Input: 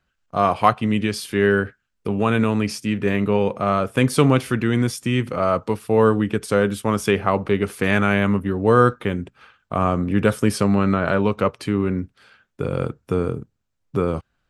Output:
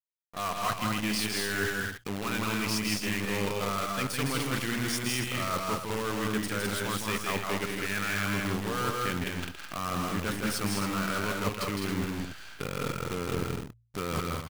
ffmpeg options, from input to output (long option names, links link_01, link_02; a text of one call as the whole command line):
ffmpeg -i in.wav -filter_complex "[0:a]asplit=2[link_01][link_02];[link_02]highpass=frequency=720:poles=1,volume=14dB,asoftclip=type=tanh:threshold=-1dB[link_03];[link_01][link_03]amix=inputs=2:normalize=0,lowpass=frequency=5400:poles=1,volume=-6dB,equalizer=frequency=600:width_type=o:width=2.2:gain=-11.5,areverse,acompressor=threshold=-34dB:ratio=10,areverse,acrusher=bits=7:dc=4:mix=0:aa=0.000001,bandreject=frequency=57.58:width_type=h:width=4,bandreject=frequency=115.16:width_type=h:width=4,asplit=2[link_04][link_05];[link_05]aecho=0:1:160.3|207|277:0.631|0.631|0.355[link_06];[link_04][link_06]amix=inputs=2:normalize=0,volume=4dB" out.wav